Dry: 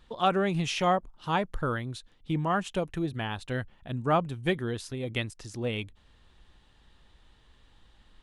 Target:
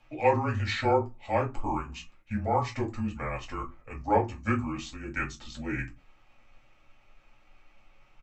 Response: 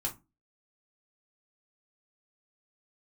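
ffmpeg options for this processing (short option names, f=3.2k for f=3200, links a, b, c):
-filter_complex "[0:a]lowshelf=f=460:g=-9,afreqshift=-24,asetrate=31183,aresample=44100,atempo=1.41421[a];[1:a]atrim=start_sample=2205[b];[a][b]afir=irnorm=-1:irlink=0"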